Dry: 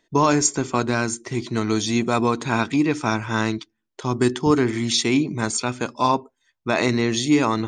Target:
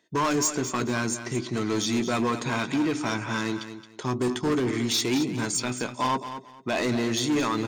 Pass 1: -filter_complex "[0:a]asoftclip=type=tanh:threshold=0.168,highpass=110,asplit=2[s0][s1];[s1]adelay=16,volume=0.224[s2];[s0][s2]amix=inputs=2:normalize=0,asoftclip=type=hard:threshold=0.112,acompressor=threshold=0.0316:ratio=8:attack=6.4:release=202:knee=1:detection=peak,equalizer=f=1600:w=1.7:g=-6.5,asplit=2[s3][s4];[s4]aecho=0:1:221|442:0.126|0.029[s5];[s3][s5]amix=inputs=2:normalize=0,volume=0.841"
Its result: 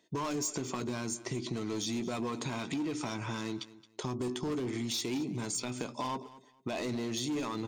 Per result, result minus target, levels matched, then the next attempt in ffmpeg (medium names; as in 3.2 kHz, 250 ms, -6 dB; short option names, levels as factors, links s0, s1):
compression: peak gain reduction +9.5 dB; echo-to-direct -7 dB; 2 kHz band -3.5 dB
-filter_complex "[0:a]asoftclip=type=tanh:threshold=0.168,highpass=110,asplit=2[s0][s1];[s1]adelay=16,volume=0.224[s2];[s0][s2]amix=inputs=2:normalize=0,asoftclip=type=hard:threshold=0.112,equalizer=f=1600:w=1.7:g=-6.5,asplit=2[s3][s4];[s4]aecho=0:1:221|442:0.126|0.029[s5];[s3][s5]amix=inputs=2:normalize=0,volume=0.841"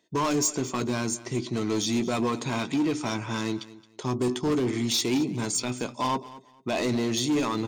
echo-to-direct -7 dB; 2 kHz band -4.0 dB
-filter_complex "[0:a]asoftclip=type=tanh:threshold=0.168,highpass=110,asplit=2[s0][s1];[s1]adelay=16,volume=0.224[s2];[s0][s2]amix=inputs=2:normalize=0,asoftclip=type=hard:threshold=0.112,equalizer=f=1600:w=1.7:g=-6.5,asplit=2[s3][s4];[s4]aecho=0:1:221|442|663:0.282|0.0648|0.0149[s5];[s3][s5]amix=inputs=2:normalize=0,volume=0.841"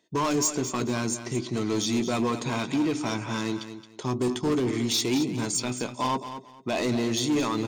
2 kHz band -4.0 dB
-filter_complex "[0:a]asoftclip=type=tanh:threshold=0.168,highpass=110,asplit=2[s0][s1];[s1]adelay=16,volume=0.224[s2];[s0][s2]amix=inputs=2:normalize=0,asoftclip=type=hard:threshold=0.112,asplit=2[s3][s4];[s4]aecho=0:1:221|442|663:0.282|0.0648|0.0149[s5];[s3][s5]amix=inputs=2:normalize=0,volume=0.841"